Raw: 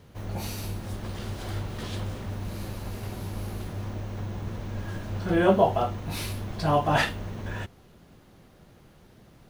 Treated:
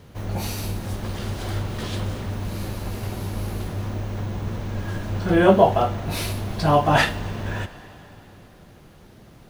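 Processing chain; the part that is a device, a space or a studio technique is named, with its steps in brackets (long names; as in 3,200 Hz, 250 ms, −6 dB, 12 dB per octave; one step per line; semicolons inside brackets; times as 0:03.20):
saturated reverb return (on a send at −12.5 dB: convolution reverb RT60 2.8 s, pre-delay 76 ms + soft clipping −28.5 dBFS, distortion −6 dB)
on the sum: level +5.5 dB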